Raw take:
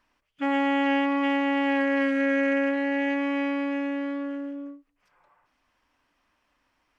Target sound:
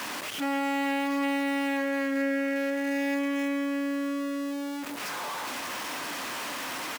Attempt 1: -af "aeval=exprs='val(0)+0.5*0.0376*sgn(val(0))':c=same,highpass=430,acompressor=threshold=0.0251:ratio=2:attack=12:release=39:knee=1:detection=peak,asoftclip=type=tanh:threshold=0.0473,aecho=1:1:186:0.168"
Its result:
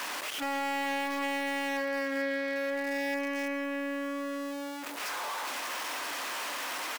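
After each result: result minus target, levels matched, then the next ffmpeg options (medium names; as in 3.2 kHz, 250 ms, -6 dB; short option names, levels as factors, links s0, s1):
saturation: distortion +20 dB; 250 Hz band -4.5 dB
-af "aeval=exprs='val(0)+0.5*0.0376*sgn(val(0))':c=same,highpass=430,acompressor=threshold=0.0251:ratio=2:attack=12:release=39:knee=1:detection=peak,asoftclip=type=tanh:threshold=0.188,aecho=1:1:186:0.168"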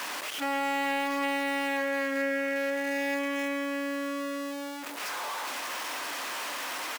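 250 Hz band -4.5 dB
-af "aeval=exprs='val(0)+0.5*0.0376*sgn(val(0))':c=same,highpass=190,acompressor=threshold=0.0251:ratio=2:attack=12:release=39:knee=1:detection=peak,asoftclip=type=tanh:threshold=0.188,aecho=1:1:186:0.168"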